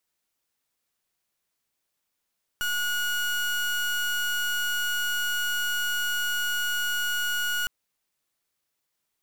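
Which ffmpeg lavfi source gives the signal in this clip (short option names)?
-f lavfi -i "aevalsrc='0.0447*(2*lt(mod(1450*t,1),0.3)-1)':d=5.06:s=44100"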